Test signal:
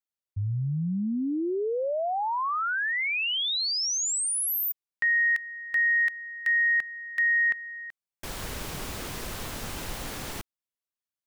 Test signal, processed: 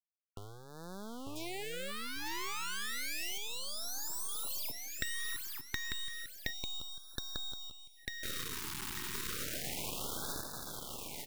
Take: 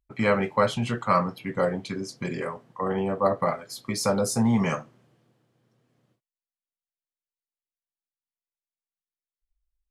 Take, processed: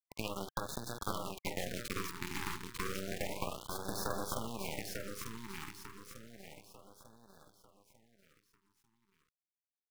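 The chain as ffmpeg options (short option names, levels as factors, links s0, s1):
-filter_complex "[0:a]acrossover=split=3800[s0][s1];[s1]acompressor=threshold=0.0141:ratio=4:attack=1:release=60[s2];[s0][s2]amix=inputs=2:normalize=0,lowshelf=f=64:g=-12,acrusher=bits=3:dc=4:mix=0:aa=0.000001,acompressor=threshold=0.0158:ratio=12:attack=21:release=34:knee=1:detection=rms,equalizer=f=140:t=o:w=0.33:g=-14,aeval=exprs='0.168*(cos(1*acos(clip(val(0)/0.168,-1,1)))-cos(1*PI/2))+0.0266*(cos(3*acos(clip(val(0)/0.168,-1,1)))-cos(3*PI/2))+0.0473*(cos(6*acos(clip(val(0)/0.168,-1,1)))-cos(6*PI/2))+0.0188*(cos(7*acos(clip(val(0)/0.168,-1,1)))-cos(7*PI/2))':c=same,aecho=1:1:896|1792|2688|3584|4480:0.668|0.274|0.112|0.0461|0.0189,afftfilt=real='re*(1-between(b*sr/1024,570*pow(2500/570,0.5+0.5*sin(2*PI*0.31*pts/sr))/1.41,570*pow(2500/570,0.5+0.5*sin(2*PI*0.31*pts/sr))*1.41))':imag='im*(1-between(b*sr/1024,570*pow(2500/570,0.5+0.5*sin(2*PI*0.31*pts/sr))/1.41,570*pow(2500/570,0.5+0.5*sin(2*PI*0.31*pts/sr))*1.41))':win_size=1024:overlap=0.75,volume=0.891"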